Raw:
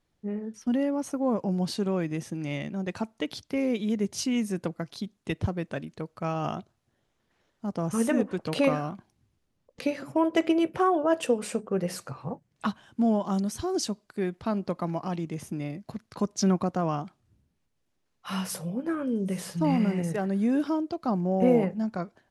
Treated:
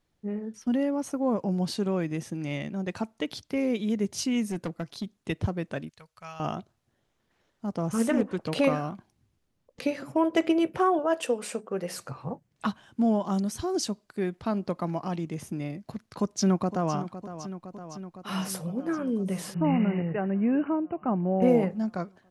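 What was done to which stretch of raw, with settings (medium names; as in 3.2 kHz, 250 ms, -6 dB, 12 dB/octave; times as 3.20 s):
4.46–5.20 s: hard clipper -26 dBFS
5.89–6.40 s: amplifier tone stack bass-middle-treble 10-0-10
7.79–8.61 s: loudspeaker Doppler distortion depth 0.15 ms
10.99–11.98 s: high-pass 380 Hz 6 dB/octave
16.20–16.95 s: echo throw 510 ms, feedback 75%, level -12.5 dB
19.54–21.42 s: brick-wall FIR low-pass 3 kHz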